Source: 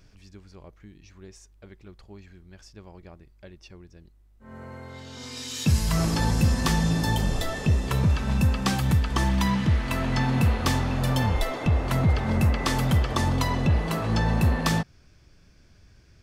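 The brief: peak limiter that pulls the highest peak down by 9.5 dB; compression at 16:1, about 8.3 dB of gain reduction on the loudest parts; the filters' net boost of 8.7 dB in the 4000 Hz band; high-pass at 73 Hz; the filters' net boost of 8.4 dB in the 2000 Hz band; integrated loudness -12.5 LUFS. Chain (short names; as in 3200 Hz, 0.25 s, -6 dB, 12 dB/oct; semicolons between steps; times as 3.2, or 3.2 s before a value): HPF 73 Hz; bell 2000 Hz +8 dB; bell 4000 Hz +8.5 dB; compressor 16:1, threshold -25 dBFS; gain +18 dB; limiter -3 dBFS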